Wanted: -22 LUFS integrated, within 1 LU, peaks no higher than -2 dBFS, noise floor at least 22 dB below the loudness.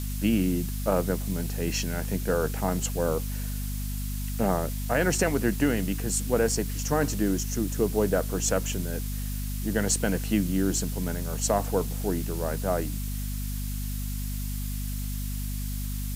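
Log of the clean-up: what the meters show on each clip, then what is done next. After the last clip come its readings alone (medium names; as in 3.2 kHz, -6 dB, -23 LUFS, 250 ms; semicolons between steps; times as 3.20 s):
hum 50 Hz; highest harmonic 250 Hz; hum level -29 dBFS; noise floor -31 dBFS; noise floor target -50 dBFS; loudness -28.0 LUFS; peak level -11.0 dBFS; loudness target -22.0 LUFS
-> de-hum 50 Hz, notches 5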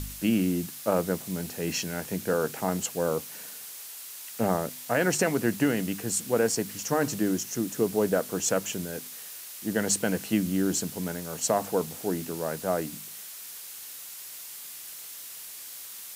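hum not found; noise floor -42 dBFS; noise floor target -52 dBFS
-> noise reduction 10 dB, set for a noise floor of -42 dBFS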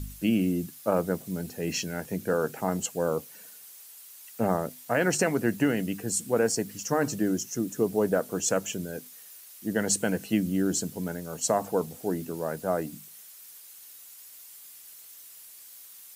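noise floor -49 dBFS; noise floor target -51 dBFS
-> noise reduction 6 dB, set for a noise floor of -49 dBFS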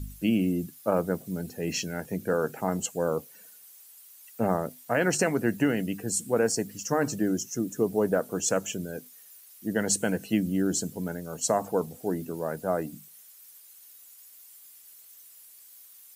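noise floor -52 dBFS; loudness -28.5 LUFS; peak level -12.0 dBFS; loudness target -22.0 LUFS
-> trim +6.5 dB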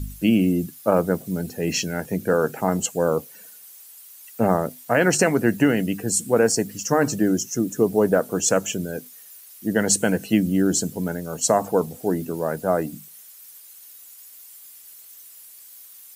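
loudness -22.0 LUFS; peak level -5.5 dBFS; noise floor -46 dBFS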